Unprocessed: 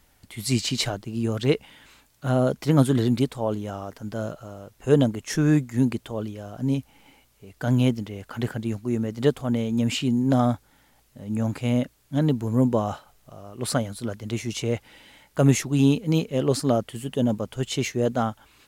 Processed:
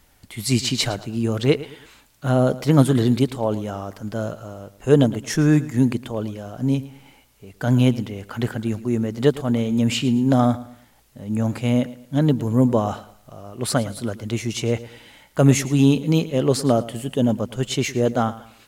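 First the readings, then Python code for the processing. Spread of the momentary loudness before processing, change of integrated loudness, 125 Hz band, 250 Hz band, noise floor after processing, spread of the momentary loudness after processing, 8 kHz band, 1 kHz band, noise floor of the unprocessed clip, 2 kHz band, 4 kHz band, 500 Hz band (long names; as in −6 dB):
12 LU, +3.5 dB, +3.5 dB, +3.5 dB, −56 dBFS, 13 LU, +3.5 dB, +3.5 dB, −62 dBFS, +3.5 dB, +3.5 dB, +3.5 dB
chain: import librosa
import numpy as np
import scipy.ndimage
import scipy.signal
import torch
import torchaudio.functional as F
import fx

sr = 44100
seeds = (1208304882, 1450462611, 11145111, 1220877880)

y = fx.echo_feedback(x, sr, ms=111, feedback_pct=34, wet_db=-17.0)
y = y * librosa.db_to_amplitude(3.5)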